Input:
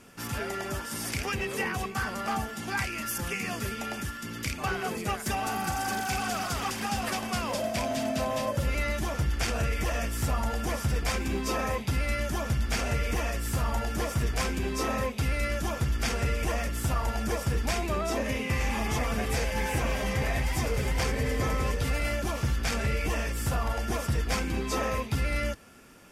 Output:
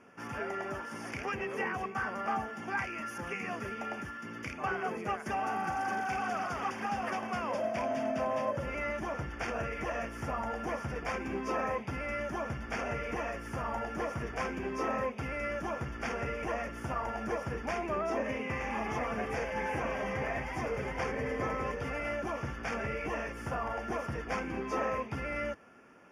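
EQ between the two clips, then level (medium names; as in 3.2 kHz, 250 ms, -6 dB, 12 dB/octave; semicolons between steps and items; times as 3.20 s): boxcar filter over 11 samples; high-pass 360 Hz 6 dB/octave; 0.0 dB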